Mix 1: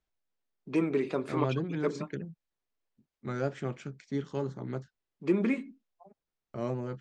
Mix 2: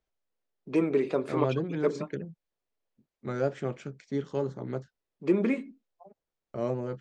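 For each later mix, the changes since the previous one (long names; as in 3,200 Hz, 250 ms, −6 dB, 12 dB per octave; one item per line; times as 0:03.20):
master: add parametric band 520 Hz +5.5 dB 1 octave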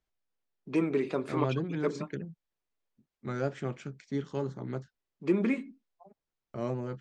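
master: add parametric band 520 Hz −5.5 dB 1 octave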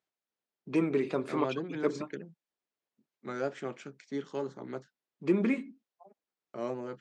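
second voice: add high-pass filter 270 Hz 12 dB per octave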